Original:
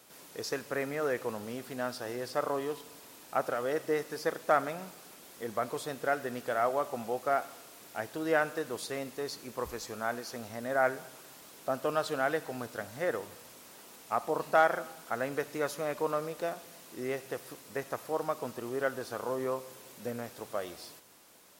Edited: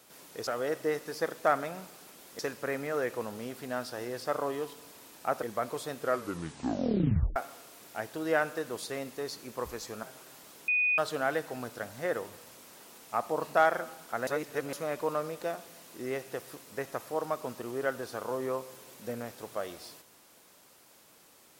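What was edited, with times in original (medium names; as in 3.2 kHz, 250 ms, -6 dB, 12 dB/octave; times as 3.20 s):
3.51–5.43 s: move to 0.47 s
5.98 s: tape stop 1.38 s
10.03–11.01 s: delete
11.66–11.96 s: bleep 2.48 kHz -23.5 dBFS
15.25–15.71 s: reverse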